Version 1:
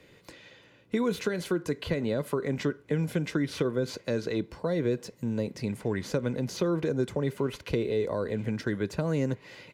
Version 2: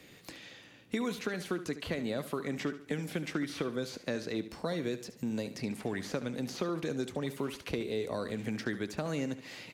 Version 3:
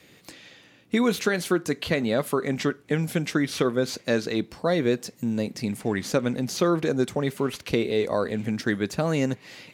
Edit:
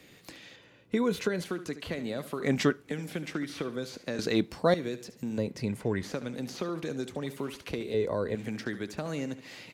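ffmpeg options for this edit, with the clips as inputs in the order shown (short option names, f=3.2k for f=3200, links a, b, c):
-filter_complex "[0:a]asplit=3[a][b][c];[2:a]asplit=2[d][e];[1:a]asplit=6[f][g][h][i][j][k];[f]atrim=end=0.562[l];[a]atrim=start=0.558:end=1.442[m];[g]atrim=start=1.438:end=2.412[n];[d]atrim=start=2.408:end=2.872[o];[h]atrim=start=2.868:end=4.192[p];[e]atrim=start=4.188:end=4.742[q];[i]atrim=start=4.738:end=5.382[r];[b]atrim=start=5.378:end=6.032[s];[j]atrim=start=6.028:end=7.942[t];[c]atrim=start=7.938:end=8.352[u];[k]atrim=start=8.348[v];[l][m]acrossfade=d=0.004:c1=hsin:c2=hsin[w];[w][n]acrossfade=d=0.004:c1=hsin:c2=hsin[x];[x][o]acrossfade=d=0.004:c1=hsin:c2=hsin[y];[y][p]acrossfade=d=0.004:c1=hsin:c2=hsin[z];[z][q]acrossfade=d=0.004:c1=hsin:c2=hsin[aa];[aa][r]acrossfade=d=0.004:c1=hsin:c2=hsin[ab];[ab][s]acrossfade=d=0.004:c1=hsin:c2=hsin[ac];[ac][t]acrossfade=d=0.004:c1=hsin:c2=hsin[ad];[ad][u]acrossfade=d=0.004:c1=hsin:c2=hsin[ae];[ae][v]acrossfade=d=0.004:c1=hsin:c2=hsin"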